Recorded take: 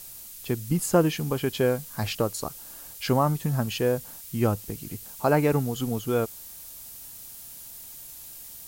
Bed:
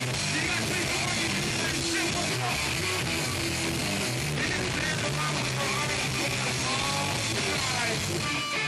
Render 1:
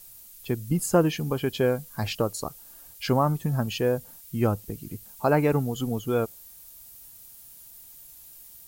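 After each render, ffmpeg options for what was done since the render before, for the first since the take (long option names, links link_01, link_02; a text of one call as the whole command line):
ffmpeg -i in.wav -af "afftdn=noise_reduction=8:noise_floor=-43" out.wav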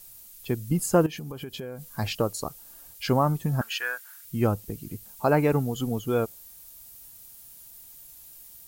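ffmpeg -i in.wav -filter_complex "[0:a]asettb=1/sr,asplit=3[link_01][link_02][link_03];[link_01]atrim=end=1.064[link_04];[link_02]atrim=start=1.06:end=1.89,asetpts=PTS-STARTPTS,afade=type=in:duration=0.004:curve=qsin,afade=type=out:start_time=0.826:duration=0.004:curve=qsin,acompressor=threshold=-32dB:ratio=16:attack=3.2:release=140:knee=1:detection=peak[link_05];[link_03]atrim=start=1.886[link_06];[link_04][link_05]acrossfade=duration=0.004:curve1=hsin:curve2=qsin[link_07];[link_07][link_06]acrossfade=duration=0.004:curve1=qsin:curve2=hsin,asettb=1/sr,asplit=3[link_08][link_09][link_10];[link_08]atrim=end=3.614[link_11];[link_09]atrim=start=3.61:end=4.25,asetpts=PTS-STARTPTS,afade=type=in:duration=0.004:curve=qsin,afade=type=out:start_time=0.636:duration=0.004:curve=qsin,highpass=frequency=1500:width_type=q:width=5.1[link_12];[link_10]atrim=start=4.246[link_13];[link_11][link_12]acrossfade=duration=0.004:curve1=hsin:curve2=qsin[link_14];[link_14][link_13]acrossfade=duration=0.004:curve1=qsin:curve2=hsin" out.wav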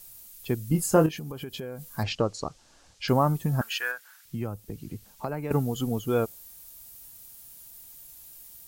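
ffmpeg -i in.wav -filter_complex "[0:a]asettb=1/sr,asplit=3[link_01][link_02][link_03];[link_01]atrim=end=0.714[link_04];[link_02]atrim=start=0.71:end=1.11,asetpts=PTS-STARTPTS,afade=type=in:duration=0.004:curve=qsin,afade=type=out:start_time=0.396:duration=0.004:curve=qsin,asplit=2[link_05][link_06];[link_06]adelay=25,volume=-8dB[link_07];[link_05][link_07]amix=inputs=2:normalize=0,atrim=end_sample=17640[link_08];[link_03]atrim=start=1.106[link_09];[link_04][link_08]acrossfade=duration=0.004:curve1=hsin:curve2=qsin[link_10];[link_10][link_09]acrossfade=duration=0.004:curve1=qsin:curve2=hsin,asettb=1/sr,asplit=3[link_11][link_12][link_13];[link_11]atrim=end=2.034[link_14];[link_12]atrim=start=2.03:end=3.08,asetpts=PTS-STARTPTS,afade=type=in:duration=0.004:curve=qsin,afade=type=out:start_time=1.046:duration=0.004:curve=qsin,lowpass=frequency=6500:width=0.5412,lowpass=frequency=6500:width=1.3066[link_15];[link_13]atrim=start=3.076[link_16];[link_14][link_15]acrossfade=duration=0.004:curve1=hsin:curve2=qsin[link_17];[link_17][link_16]acrossfade=duration=0.004:curve1=qsin:curve2=hsin,asettb=1/sr,asplit=3[link_18][link_19][link_20];[link_18]atrim=end=3.914[link_21];[link_19]atrim=start=3.91:end=5.51,asetpts=PTS-STARTPTS,afade=type=in:duration=0.004:curve=qsin,afade=type=out:start_time=1.596:duration=0.004:curve=qsin,acrossover=split=98|6400[link_22][link_23][link_24];[link_22]acompressor=threshold=-41dB:ratio=4[link_25];[link_23]acompressor=threshold=-32dB:ratio=4[link_26];[link_24]acompressor=threshold=-57dB:ratio=4[link_27];[link_25][link_26][link_27]amix=inputs=3:normalize=0[link_28];[link_20]atrim=start=5.506[link_29];[link_21][link_28]acrossfade=duration=0.004:curve1=hsin:curve2=qsin[link_30];[link_30][link_29]acrossfade=duration=0.004:curve1=qsin:curve2=hsin" out.wav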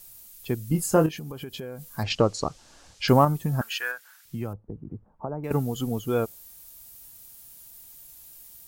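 ffmpeg -i in.wav -filter_complex "[0:a]asettb=1/sr,asplit=3[link_01][link_02][link_03];[link_01]atrim=end=2.104[link_04];[link_02]atrim=start=2.1:end=3.25,asetpts=PTS-STARTPTS,afade=type=in:duration=0.004:curve=qsin,afade=type=out:start_time=1.146:duration=0.004:curve=qsin,acontrast=26[link_05];[link_03]atrim=start=3.246[link_06];[link_04][link_05]acrossfade=duration=0.004:curve1=hsin:curve2=qsin[link_07];[link_07][link_06]acrossfade=duration=0.004:curve1=qsin:curve2=hsin,asettb=1/sr,asplit=3[link_08][link_09][link_10];[link_08]atrim=end=4.534[link_11];[link_09]atrim=start=4.53:end=5.44,asetpts=PTS-STARTPTS,afade=type=in:duration=0.004:curve=qsin,afade=type=out:start_time=0.906:duration=0.004:curve=qsin,lowpass=frequency=1100:width=0.5412,lowpass=frequency=1100:width=1.3066[link_12];[link_10]atrim=start=5.436[link_13];[link_11][link_12]acrossfade=duration=0.004:curve1=hsin:curve2=qsin[link_14];[link_14][link_13]acrossfade=duration=0.004:curve1=qsin:curve2=hsin" out.wav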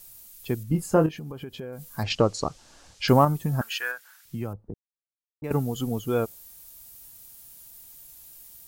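ffmpeg -i in.wav -filter_complex "[0:a]asettb=1/sr,asplit=3[link_01][link_02][link_03];[link_01]atrim=end=0.634[link_04];[link_02]atrim=start=0.63:end=1.73,asetpts=PTS-STARTPTS,afade=type=in:duration=0.004:curve=qsin,afade=type=out:start_time=1.096:duration=0.004:curve=qsin,highshelf=frequency=3600:gain=-9.5[link_05];[link_03]atrim=start=1.726[link_06];[link_04][link_05]acrossfade=duration=0.004:curve1=hsin:curve2=qsin[link_07];[link_07][link_06]acrossfade=duration=0.004:curve1=qsin:curve2=hsin,asplit=3[link_08][link_09][link_10];[link_08]atrim=end=4.74,asetpts=PTS-STARTPTS,afade=type=out:start_time=4.736:duration=0.004:curve=hsin[link_11];[link_09]atrim=start=4.74:end=5.42,asetpts=PTS-STARTPTS,volume=0[link_12];[link_10]atrim=start=5.42,asetpts=PTS-STARTPTS,afade=type=in:duration=0.004:curve=hsin[link_13];[link_11][link_12][link_13]concat=n=3:v=0:a=1" out.wav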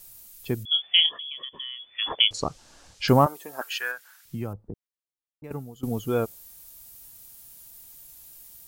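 ffmpeg -i in.wav -filter_complex "[0:a]asettb=1/sr,asplit=3[link_01][link_02][link_03];[link_01]atrim=end=0.654[link_04];[link_02]atrim=start=0.65:end=2.31,asetpts=PTS-STARTPTS,afade=type=in:duration=0.004:curve=qsin,afade=type=out:start_time=1.656:duration=0.004:curve=qsin,lowpass=frequency=3000:width_type=q:width=0.5098,lowpass=frequency=3000:width_type=q:width=0.6013,lowpass=frequency=3000:width_type=q:width=0.9,lowpass=frequency=3000:width_type=q:width=2.563,afreqshift=-3500[link_05];[link_03]atrim=start=2.306[link_06];[link_04][link_05]acrossfade=duration=0.004:curve1=hsin:curve2=qsin[link_07];[link_07][link_06]acrossfade=duration=0.004:curve1=qsin:curve2=hsin,asettb=1/sr,asplit=3[link_08][link_09][link_10];[link_08]atrim=end=3.264[link_11];[link_09]atrim=start=3.26:end=3.81,asetpts=PTS-STARTPTS,afade=type=in:duration=0.004:curve=qsin,afade=type=out:start_time=0.546:duration=0.004:curve=qsin,highpass=frequency=380:width=0.5412,highpass=frequency=380:width=1.3066[link_12];[link_10]atrim=start=3.806[link_13];[link_11][link_12]acrossfade=duration=0.004:curve1=hsin:curve2=qsin[link_14];[link_14][link_13]acrossfade=duration=0.004:curve1=qsin:curve2=hsin,asplit=2[link_15][link_16];[link_15]atrim=end=5.83,asetpts=PTS-STARTPTS,afade=type=out:start_time=4.71:duration=1.12:silence=0.112202[link_17];[link_16]atrim=start=5.83,asetpts=PTS-STARTPTS,afade=type=in:duration=0.004:curve=hsin:silence=0.112202[link_18];[link_17][link_18]concat=n=2:v=0:a=1" out.wav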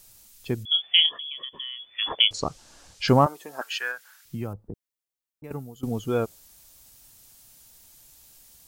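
ffmpeg -i in.wav -filter_complex "[0:a]acrossover=split=8000[link_01][link_02];[link_02]acompressor=threshold=-59dB:ratio=4:attack=1:release=60[link_03];[link_01][link_03]amix=inputs=2:normalize=0,highshelf=frequency=6700:gain=4.5" out.wav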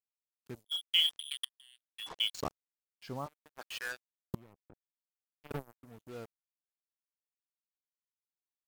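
ffmpeg -i in.wav -af "acrusher=bits=4:mix=0:aa=0.5,aeval=exprs='val(0)*pow(10,-28*if(lt(mod(-0.69*n/s,1),2*abs(-0.69)/1000),1-mod(-0.69*n/s,1)/(2*abs(-0.69)/1000),(mod(-0.69*n/s,1)-2*abs(-0.69)/1000)/(1-2*abs(-0.69)/1000))/20)':channel_layout=same" out.wav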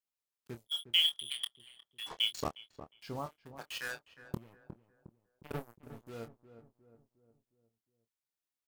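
ffmpeg -i in.wav -filter_complex "[0:a]asplit=2[link_01][link_02];[link_02]adelay=26,volume=-9dB[link_03];[link_01][link_03]amix=inputs=2:normalize=0,asplit=2[link_04][link_05];[link_05]adelay=359,lowpass=frequency=1100:poles=1,volume=-11.5dB,asplit=2[link_06][link_07];[link_07]adelay=359,lowpass=frequency=1100:poles=1,volume=0.51,asplit=2[link_08][link_09];[link_09]adelay=359,lowpass=frequency=1100:poles=1,volume=0.51,asplit=2[link_10][link_11];[link_11]adelay=359,lowpass=frequency=1100:poles=1,volume=0.51,asplit=2[link_12][link_13];[link_13]adelay=359,lowpass=frequency=1100:poles=1,volume=0.51[link_14];[link_04][link_06][link_08][link_10][link_12][link_14]amix=inputs=6:normalize=0" out.wav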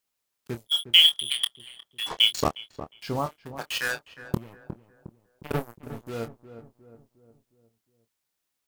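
ffmpeg -i in.wav -af "volume=11.5dB" out.wav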